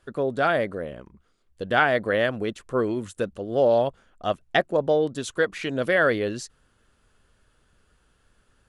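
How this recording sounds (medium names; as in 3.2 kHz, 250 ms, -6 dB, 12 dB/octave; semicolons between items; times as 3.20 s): noise floor -66 dBFS; spectral tilt -3.5 dB/octave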